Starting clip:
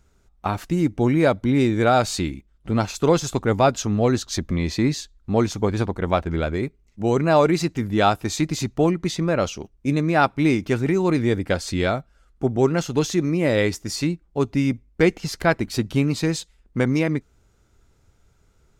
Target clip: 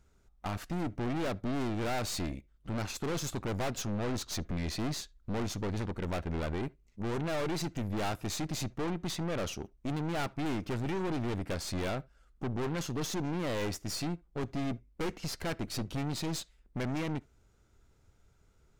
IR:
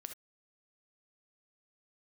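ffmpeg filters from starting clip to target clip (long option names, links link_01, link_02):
-filter_complex "[0:a]aeval=exprs='(tanh(28.2*val(0)+0.65)-tanh(0.65))/28.2':channel_layout=same,asplit=2[link_01][link_02];[1:a]atrim=start_sample=2205,lowpass=4800[link_03];[link_02][link_03]afir=irnorm=-1:irlink=0,volume=-13dB[link_04];[link_01][link_04]amix=inputs=2:normalize=0,volume=-3.5dB"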